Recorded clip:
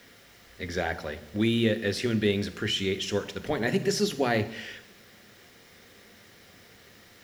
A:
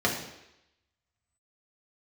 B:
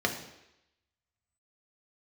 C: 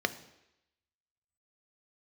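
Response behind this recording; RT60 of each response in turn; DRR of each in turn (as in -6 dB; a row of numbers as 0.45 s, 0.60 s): C; 0.85 s, 0.85 s, 0.85 s; -3.0 dB, 2.0 dB, 10.0 dB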